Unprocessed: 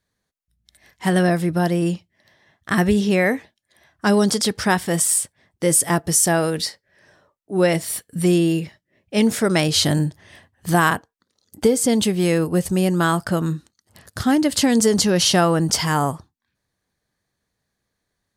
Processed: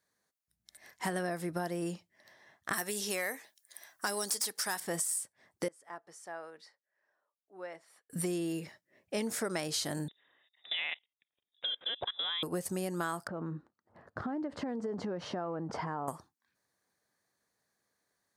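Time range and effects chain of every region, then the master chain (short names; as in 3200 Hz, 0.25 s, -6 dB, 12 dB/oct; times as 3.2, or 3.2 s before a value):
2.73–4.8 RIAA curve recording + hard clip -11 dBFS
5.68–8.1 LPF 1100 Hz + differentiator
10.08–12.43 bell 210 Hz -11 dB 0.39 oct + level quantiser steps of 22 dB + inverted band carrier 3700 Hz
13.27–16.08 LPF 1100 Hz + compressor 10:1, threshold -23 dBFS
whole clip: HPF 520 Hz 6 dB/oct; bell 3100 Hz -7 dB 0.99 oct; compressor 5:1, threshold -33 dBFS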